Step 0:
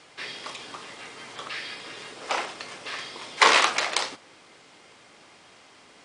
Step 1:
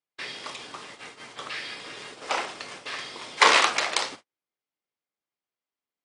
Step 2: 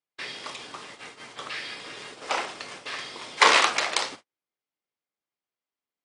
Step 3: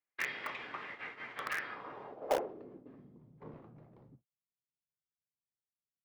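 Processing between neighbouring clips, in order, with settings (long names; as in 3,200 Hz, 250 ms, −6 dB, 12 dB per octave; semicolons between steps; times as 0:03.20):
noise gate −42 dBFS, range −43 dB
no processing that can be heard
low-pass filter sweep 2,000 Hz → 140 Hz, 0:01.41–0:03.34; in parallel at −7 dB: bit reduction 4 bits; on the sum: level −5.5 dB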